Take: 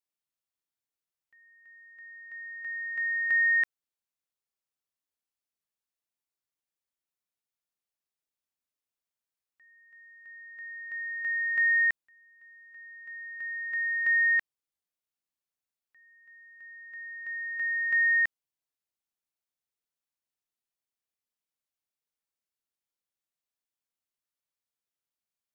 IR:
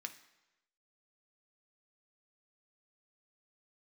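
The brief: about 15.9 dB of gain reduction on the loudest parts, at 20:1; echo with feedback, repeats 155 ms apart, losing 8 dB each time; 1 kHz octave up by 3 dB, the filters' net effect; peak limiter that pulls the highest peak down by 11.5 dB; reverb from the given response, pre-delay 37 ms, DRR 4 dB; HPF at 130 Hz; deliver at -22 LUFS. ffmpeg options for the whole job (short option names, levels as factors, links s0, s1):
-filter_complex "[0:a]highpass=130,equalizer=f=1000:t=o:g=4,acompressor=threshold=0.0141:ratio=20,alimiter=level_in=7.08:limit=0.0631:level=0:latency=1,volume=0.141,aecho=1:1:155|310|465|620|775:0.398|0.159|0.0637|0.0255|0.0102,asplit=2[s0][s1];[1:a]atrim=start_sample=2205,adelay=37[s2];[s1][s2]afir=irnorm=-1:irlink=0,volume=0.841[s3];[s0][s3]amix=inputs=2:normalize=0,volume=23.7"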